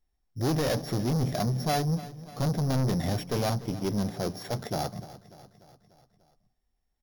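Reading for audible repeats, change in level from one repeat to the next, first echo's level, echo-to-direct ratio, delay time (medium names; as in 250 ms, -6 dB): 4, -4.5 dB, -17.0 dB, -15.0 dB, 295 ms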